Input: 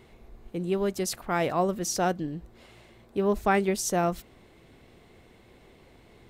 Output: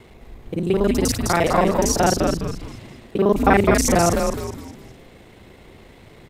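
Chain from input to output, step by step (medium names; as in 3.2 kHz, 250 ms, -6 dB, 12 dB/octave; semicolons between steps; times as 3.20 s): time reversed locally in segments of 35 ms; frequency-shifting echo 206 ms, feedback 39%, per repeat -140 Hz, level -3.5 dB; trim +8 dB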